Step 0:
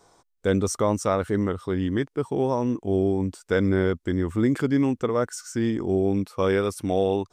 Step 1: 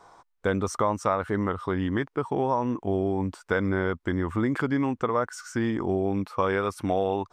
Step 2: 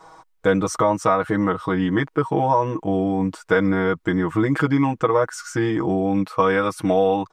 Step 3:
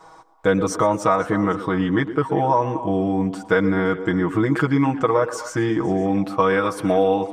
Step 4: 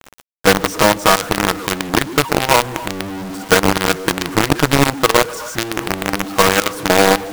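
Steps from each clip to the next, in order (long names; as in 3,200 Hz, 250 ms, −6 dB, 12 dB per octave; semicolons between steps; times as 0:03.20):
drawn EQ curve 440 Hz 0 dB, 1,000 Hz +10 dB, 7,800 Hz −6 dB; downward compressor 2.5 to 1, threshold −23 dBFS, peak gain reduction 8 dB
comb filter 6.3 ms, depth 92%; level +4 dB
echo through a band-pass that steps 128 ms, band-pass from 340 Hz, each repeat 1.4 octaves, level −9 dB; feedback echo with a swinging delay time 116 ms, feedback 51%, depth 122 cents, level −20 dB
log-companded quantiser 2 bits; level −1 dB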